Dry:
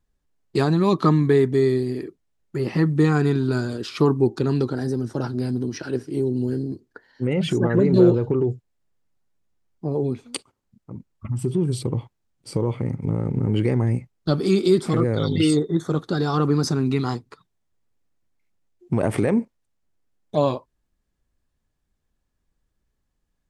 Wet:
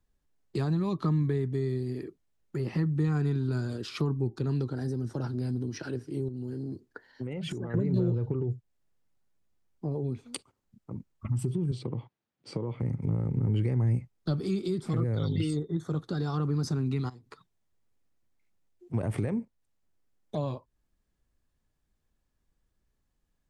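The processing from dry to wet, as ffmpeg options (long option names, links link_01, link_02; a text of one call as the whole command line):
ffmpeg -i in.wav -filter_complex "[0:a]asettb=1/sr,asplit=3[link_01][link_02][link_03];[link_01]atrim=end=6.284[link_04];[link_02]atrim=start=6.28:end=7.74,asetpts=PTS-STARTPTS,afade=type=in:duration=0.004:curve=qsin,afade=type=out:start_time=1.456:duration=0.004:curve=qsin,acompressor=threshold=-27dB:ratio=6:attack=3.2:release=140:knee=1:detection=peak[link_05];[link_03]atrim=start=7.736[link_06];[link_04][link_05]acrossfade=duration=0.004:curve1=hsin:curve2=qsin[link_07];[link_07][link_06]acrossfade=duration=0.004:curve1=qsin:curve2=hsin,asettb=1/sr,asplit=3[link_08][link_09][link_10];[link_08]atrim=end=11.714[link_11];[link_09]atrim=start=11.71:end=12.8,asetpts=PTS-STARTPTS,afade=type=in:duration=0.004:curve=qsin,afade=type=out:start_time=1.086:duration=0.004:curve=qsin,highpass=160,lowpass=4200[link_12];[link_10]atrim=start=12.796[link_13];[link_11][link_12]acrossfade=duration=0.004:curve1=hsin:curve2=qsin[link_14];[link_14][link_13]acrossfade=duration=0.004:curve1=qsin:curve2=hsin,asplit=3[link_15][link_16][link_17];[link_15]afade=type=out:start_time=17.08:duration=0.02[link_18];[link_16]acompressor=threshold=-39dB:ratio=8:attack=3.2:release=140:knee=1:detection=peak,afade=type=in:start_time=17.08:duration=0.02,afade=type=out:start_time=18.93:duration=0.02[link_19];[link_17]afade=type=in:start_time=18.93:duration=0.02[link_20];[link_18][link_19][link_20]amix=inputs=3:normalize=0,acrossover=split=150[link_21][link_22];[link_22]acompressor=threshold=-34dB:ratio=3[link_23];[link_21][link_23]amix=inputs=2:normalize=0,volume=-2dB" out.wav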